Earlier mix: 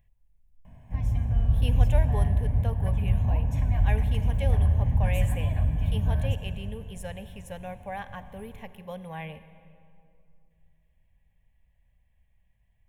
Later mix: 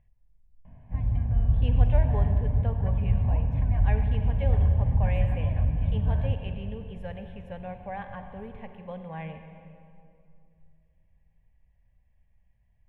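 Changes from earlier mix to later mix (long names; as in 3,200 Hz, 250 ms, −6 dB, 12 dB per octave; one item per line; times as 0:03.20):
speech: send +7.0 dB
master: add high-frequency loss of the air 410 metres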